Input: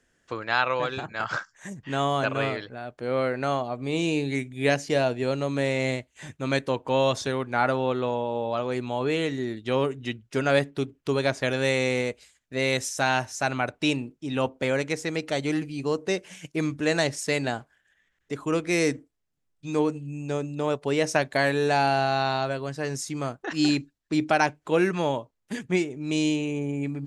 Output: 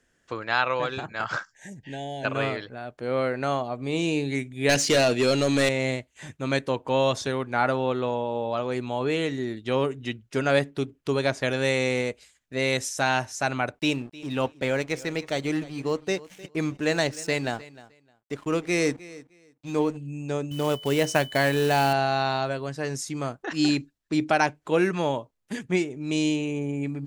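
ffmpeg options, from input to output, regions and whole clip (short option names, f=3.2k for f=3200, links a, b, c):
-filter_complex "[0:a]asettb=1/sr,asplit=3[a][b][c];[a]atrim=end=1.524[d];[b]atrim=start=1.52:end=2.25,asetpts=PTS-STARTPTS,afade=t=in:d=0.004:c=qsin,afade=t=out:st=0.726:d=0.004:c=qsin,acompressor=threshold=-43dB:ratio=1.5:attack=3.2:release=140:knee=1:detection=peak,asuperstop=centerf=1200:order=20:qfactor=2[e];[c]atrim=start=2.246[f];[d][e]acrossfade=d=0.004:c1=hsin:c2=qsin[g];[g][f]acrossfade=d=0.004:c1=qsin:c2=hsin,asettb=1/sr,asplit=3[h][i][j];[h]atrim=end=4.694[k];[i]atrim=start=4.69:end=5.69,asetpts=PTS-STARTPTS,afade=t=in:d=0.004:c=qsin,afade=t=out:st=0.996:d=0.004:c=qsin,equalizer=f=970:t=o:w=2.1:g=-14,asplit=2[l][m];[m]highpass=f=720:p=1,volume=26dB,asoftclip=type=tanh:threshold=-10.5dB[n];[l][n]amix=inputs=2:normalize=0,lowpass=f=6.2k:p=1,volume=-6dB[o];[j]atrim=start=5.686[p];[k][o]acrossfade=d=0.004:c1=hsin:c2=qsin[q];[q][p]acrossfade=d=0.004:c1=qsin:c2=hsin,asettb=1/sr,asplit=3[r][s][t];[r]atrim=end=13.794[u];[s]atrim=start=13.79:end=19.97,asetpts=PTS-STARTPTS,afade=t=in:d=0.004:c=qsin,afade=t=out:st=6.176:d=0.004:c=qsin,lowpass=10k,aeval=exprs='sgn(val(0))*max(abs(val(0))-0.00473,0)':c=same,aecho=1:1:307|614:0.112|0.0202,atrim=end_sample=272538[v];[t]atrim=start=19.966[w];[u][v]acrossfade=d=0.004:c1=hsin:c2=qsin[x];[x][w]acrossfade=d=0.004:c1=qsin:c2=hsin,asettb=1/sr,asplit=3[y][z][aa];[y]atrim=end=20.514[ab];[z]atrim=start=20.51:end=21.93,asetpts=PTS-STARTPTS,afade=t=in:d=0.004:c=qsin,afade=t=out:st=1.416:d=0.004:c=qsin,equalizer=f=77:t=o:w=2.4:g=5,aeval=exprs='val(0)+0.01*sin(2*PI*3000*n/s)':c=same,acrusher=bits=4:mode=log:mix=0:aa=0.000001[ac];[aa]atrim=start=21.926[ad];[ab][ac]acrossfade=d=0.004:c1=hsin:c2=qsin[ae];[ae][ad]acrossfade=d=0.004:c1=qsin:c2=hsin"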